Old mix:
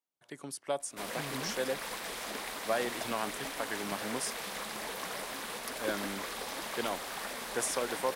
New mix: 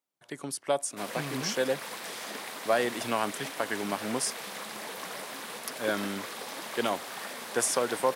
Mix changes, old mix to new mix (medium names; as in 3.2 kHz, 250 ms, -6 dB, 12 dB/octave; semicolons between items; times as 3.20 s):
speech +6.0 dB; background: add high-pass 120 Hz 24 dB/octave